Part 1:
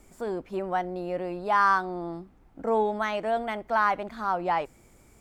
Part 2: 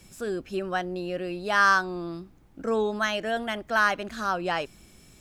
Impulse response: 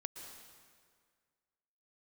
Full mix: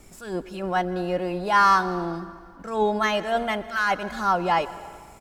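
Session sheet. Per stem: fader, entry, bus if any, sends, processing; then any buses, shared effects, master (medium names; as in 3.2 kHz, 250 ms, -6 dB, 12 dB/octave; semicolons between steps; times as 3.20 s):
+2.0 dB, 0.00 s, send -4.5 dB, attacks held to a fixed rise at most 130 dB/s
-6.5 dB, 2.3 ms, send -4 dB, elliptic band-stop 180–1200 Hz; waveshaping leveller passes 1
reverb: on, RT60 1.9 s, pre-delay 107 ms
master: none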